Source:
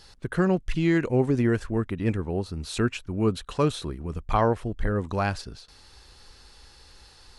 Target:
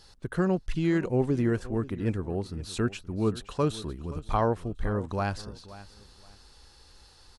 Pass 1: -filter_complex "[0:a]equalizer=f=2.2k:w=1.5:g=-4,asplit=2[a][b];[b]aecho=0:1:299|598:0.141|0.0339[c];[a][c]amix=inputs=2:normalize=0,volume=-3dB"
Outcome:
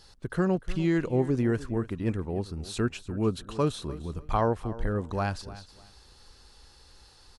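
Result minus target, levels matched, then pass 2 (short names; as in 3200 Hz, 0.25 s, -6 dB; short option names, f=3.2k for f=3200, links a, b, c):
echo 0.225 s early
-filter_complex "[0:a]equalizer=f=2.2k:w=1.5:g=-4,asplit=2[a][b];[b]aecho=0:1:524|1048:0.141|0.0339[c];[a][c]amix=inputs=2:normalize=0,volume=-3dB"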